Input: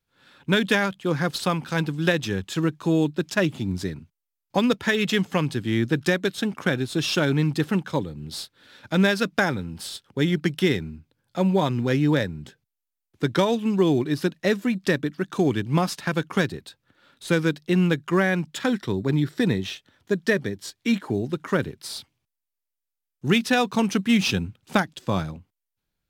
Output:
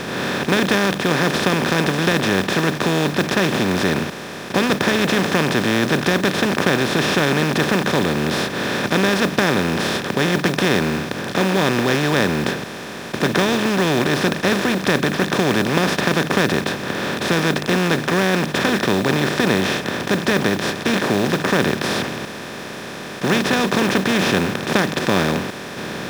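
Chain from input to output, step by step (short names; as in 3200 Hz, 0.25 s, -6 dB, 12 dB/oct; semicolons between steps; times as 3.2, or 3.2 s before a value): per-bin compression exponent 0.2; modulation noise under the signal 24 dB; gain -5 dB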